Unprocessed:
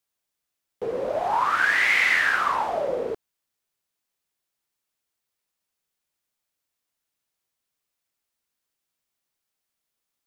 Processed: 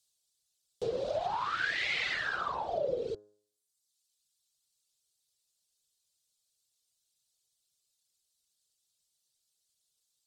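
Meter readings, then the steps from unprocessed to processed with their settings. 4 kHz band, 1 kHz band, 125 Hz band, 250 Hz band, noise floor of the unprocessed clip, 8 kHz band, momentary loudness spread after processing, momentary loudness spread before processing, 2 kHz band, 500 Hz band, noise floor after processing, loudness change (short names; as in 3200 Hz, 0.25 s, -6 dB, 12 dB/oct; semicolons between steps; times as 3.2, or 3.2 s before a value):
-5.5 dB, -11.0 dB, -2.5 dB, -8.5 dB, -83 dBFS, -12.5 dB, 7 LU, 14 LU, -13.0 dB, -6.0 dB, -81 dBFS, -11.5 dB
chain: reverb removal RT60 1.2 s; de-hum 104.1 Hz, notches 16; treble ducked by the level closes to 2200 Hz, closed at -22.5 dBFS; ten-band EQ 125 Hz +4 dB, 250 Hz -9 dB, 1000 Hz -9 dB, 2000 Hz -11 dB, 4000 Hz +11 dB, 8000 Hz +10 dB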